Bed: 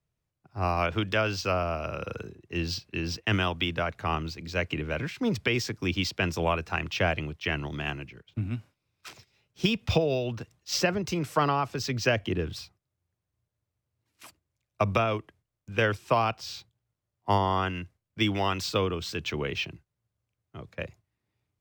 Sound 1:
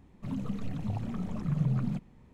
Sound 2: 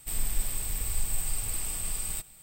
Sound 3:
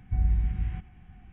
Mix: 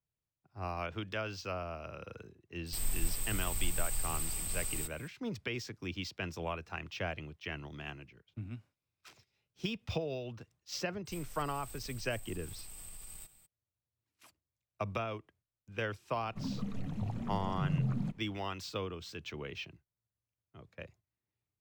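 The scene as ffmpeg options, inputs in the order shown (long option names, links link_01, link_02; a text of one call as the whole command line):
ffmpeg -i bed.wav -i cue0.wav -i cue1.wav -filter_complex "[2:a]asplit=2[link_01][link_02];[0:a]volume=-11.5dB[link_03];[link_02]acompressor=threshold=-33dB:ratio=6:attack=3.2:release=140:knee=1:detection=peak[link_04];[link_01]atrim=end=2.42,asetpts=PTS-STARTPTS,volume=-4.5dB,afade=type=in:duration=0.004:curve=hsin,afade=type=out:start_time=2.416:duration=0.004:curve=hsin,adelay=2660[link_05];[link_04]atrim=end=2.42,asetpts=PTS-STARTPTS,volume=-10.5dB,afade=type=in:duration=0.02,afade=type=out:start_time=2.4:duration=0.02,adelay=11050[link_06];[1:a]atrim=end=2.33,asetpts=PTS-STARTPTS,volume=-3.5dB,afade=type=in:duration=0.004:curve=hsin,afade=type=out:start_time=2.326:duration=0.004:curve=hsin,adelay=16130[link_07];[link_03][link_05][link_06][link_07]amix=inputs=4:normalize=0" out.wav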